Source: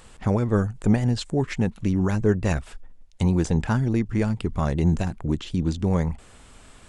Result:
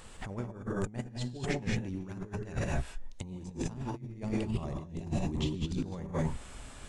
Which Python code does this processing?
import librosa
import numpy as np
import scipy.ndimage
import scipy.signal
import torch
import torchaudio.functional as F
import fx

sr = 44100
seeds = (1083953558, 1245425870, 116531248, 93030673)

y = fx.rev_gated(x, sr, seeds[0], gate_ms=240, shape='rising', drr_db=0.5)
y = fx.over_compress(y, sr, threshold_db=-26.0, ratio=-0.5)
y = fx.peak_eq(y, sr, hz=1500.0, db=-12.0, octaves=0.37, at=(3.22, 5.67))
y = F.gain(torch.from_numpy(y), -8.0).numpy()